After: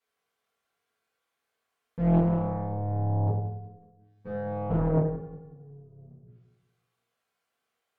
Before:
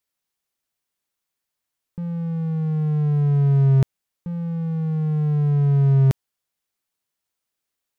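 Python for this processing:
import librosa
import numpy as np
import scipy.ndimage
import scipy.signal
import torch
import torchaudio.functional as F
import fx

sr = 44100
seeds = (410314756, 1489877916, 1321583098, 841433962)

y = fx.octave_divider(x, sr, octaves=2, level_db=-3.0)
y = fx.env_lowpass_down(y, sr, base_hz=420.0, full_db=-14.5)
y = fx.bass_treble(y, sr, bass_db=-11, treble_db=-12)
y = fx.hum_notches(y, sr, base_hz=60, count=7)
y = fx.robotise(y, sr, hz=103.0, at=(2.18, 4.7))
y = fx.gate_flip(y, sr, shuts_db=-23.0, range_db=-34)
y = fx.echo_feedback(y, sr, ms=183, feedback_pct=35, wet_db=-10.5)
y = fx.rev_fdn(y, sr, rt60_s=0.77, lf_ratio=0.95, hf_ratio=0.55, size_ms=13.0, drr_db=-8.0)
y = fx.doppler_dist(y, sr, depth_ms=0.77)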